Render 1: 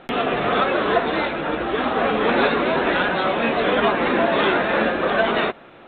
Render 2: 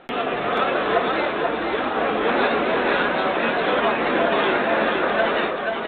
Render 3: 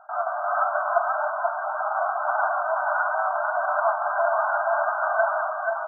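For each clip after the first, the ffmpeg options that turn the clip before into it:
-filter_complex "[0:a]bass=f=250:g=-5,treble=f=4k:g=-3,asplit=2[a][b];[b]aecho=0:1:483:0.668[c];[a][c]amix=inputs=2:normalize=0,volume=-2dB"
-af "afftfilt=real='re*between(b*sr/4096,590,1600)':imag='im*between(b*sr/4096,590,1600)':win_size=4096:overlap=0.75"

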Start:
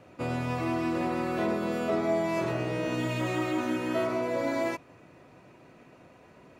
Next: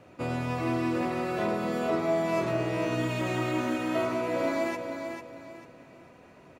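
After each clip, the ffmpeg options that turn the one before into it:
-af "aecho=1:1:445|890|1335|1780:0.447|0.143|0.0457|0.0146"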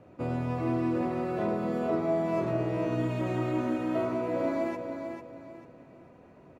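-af "tiltshelf=f=1.4k:g=6.5,volume=-5.5dB"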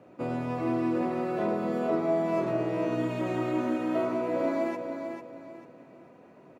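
-af "highpass=170,volume=1.5dB"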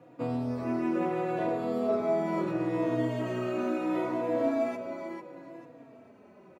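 -filter_complex "[0:a]asplit=2[a][b];[b]adelay=3.7,afreqshift=-0.72[c];[a][c]amix=inputs=2:normalize=1,volume=2dB"

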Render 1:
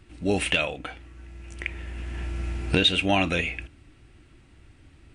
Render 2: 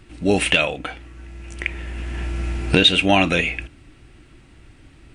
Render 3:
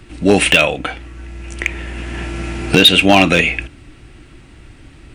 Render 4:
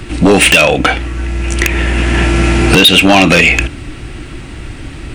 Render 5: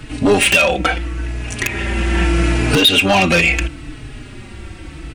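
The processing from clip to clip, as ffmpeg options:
-af "equalizer=f=82:w=3.8:g=-7,volume=6.5dB"
-filter_complex "[0:a]acrossover=split=110[a][b];[a]acompressor=threshold=-35dB:ratio=6[c];[b]volume=9dB,asoftclip=hard,volume=-9dB[d];[c][d]amix=inputs=2:normalize=0,volume=7dB"
-af "acompressor=threshold=-15dB:ratio=5,aeval=exprs='0.708*sin(PI/2*2.82*val(0)/0.708)':c=same,volume=1.5dB"
-filter_complex "[0:a]asplit=2[a][b];[b]adelay=4.2,afreqshift=-0.76[c];[a][c]amix=inputs=2:normalize=1,volume=-3dB"

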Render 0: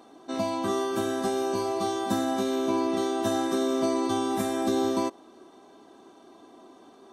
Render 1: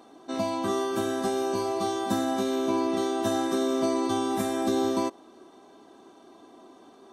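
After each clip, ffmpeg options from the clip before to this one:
-af anull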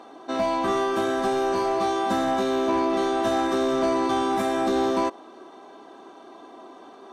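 -filter_complex "[0:a]asplit=2[a][b];[b]highpass=f=720:p=1,volume=17dB,asoftclip=type=tanh:threshold=-13.5dB[c];[a][c]amix=inputs=2:normalize=0,lowpass=f=1.8k:p=1,volume=-6dB"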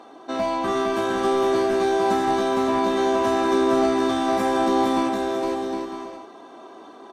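-af "aecho=1:1:460|759|953.4|1080|1162:0.631|0.398|0.251|0.158|0.1"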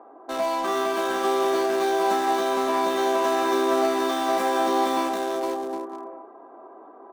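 -filter_complex "[0:a]highpass=380,acrossover=split=1400[a][b];[b]acrusher=bits=5:mix=0:aa=0.5[c];[a][c]amix=inputs=2:normalize=0"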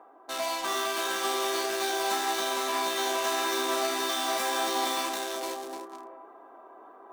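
-af "tiltshelf=f=1.4k:g=-8.5,areverse,acompressor=mode=upward:threshold=-41dB:ratio=2.5,areverse,flanger=delay=9.5:depth=4.1:regen=-71:speed=1.7:shape=sinusoidal,volume=1.5dB"

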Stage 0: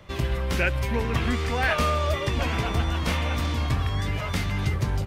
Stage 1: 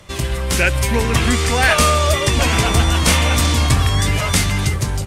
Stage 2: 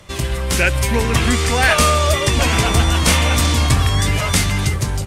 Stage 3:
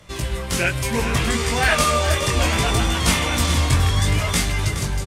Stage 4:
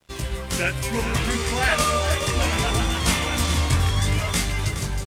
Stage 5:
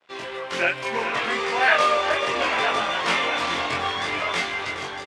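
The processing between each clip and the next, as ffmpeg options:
-af "acontrast=35,equalizer=f=8.8k:w=0.7:g=15,dynaudnorm=f=130:g=9:m=11.5dB,volume=-1dB"
-af anull
-af "flanger=delay=17.5:depth=5.9:speed=0.67,aecho=1:1:420:0.316,volume=-1dB"
-af "aeval=exprs='sgn(val(0))*max(abs(val(0))-0.00562,0)':c=same,volume=-2.5dB"
-filter_complex "[0:a]highpass=490,lowpass=2.9k,asplit=2[a][b];[b]adelay=23,volume=-2.5dB[c];[a][c]amix=inputs=2:normalize=0,aecho=1:1:956:0.266,volume=2.5dB"

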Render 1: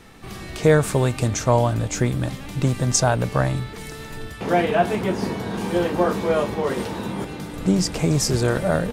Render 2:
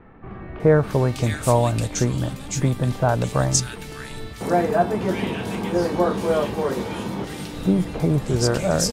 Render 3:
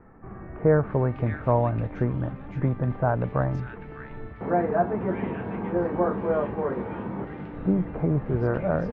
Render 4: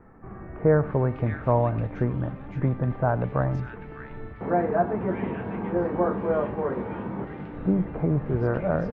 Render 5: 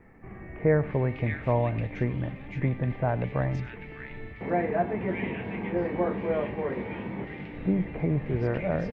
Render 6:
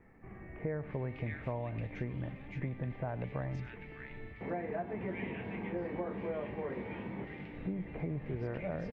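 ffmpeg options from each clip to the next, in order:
-filter_complex "[0:a]acrossover=split=1900[a][b];[b]adelay=600[c];[a][c]amix=inputs=2:normalize=0"
-af "lowpass=f=1.9k:w=0.5412,lowpass=f=1.9k:w=1.3066,volume=-4dB"
-filter_complex "[0:a]asplit=2[a][b];[b]adelay=99.13,volume=-18dB,highshelf=f=4k:g=-2.23[c];[a][c]amix=inputs=2:normalize=0"
-af "highshelf=f=1.7k:t=q:w=3:g=6.5,volume=-2.5dB"
-af "acompressor=threshold=-27dB:ratio=6,volume=-6.5dB"

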